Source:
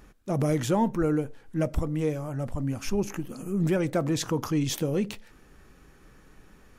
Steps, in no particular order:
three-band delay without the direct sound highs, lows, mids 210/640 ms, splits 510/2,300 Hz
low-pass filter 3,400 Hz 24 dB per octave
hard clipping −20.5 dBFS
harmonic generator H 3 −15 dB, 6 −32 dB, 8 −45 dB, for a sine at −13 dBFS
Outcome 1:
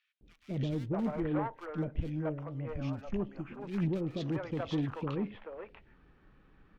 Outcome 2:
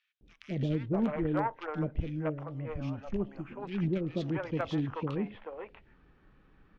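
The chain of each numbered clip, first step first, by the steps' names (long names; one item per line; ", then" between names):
low-pass filter, then hard clipping, then three-band delay without the direct sound, then harmonic generator
low-pass filter, then harmonic generator, then three-band delay without the direct sound, then hard clipping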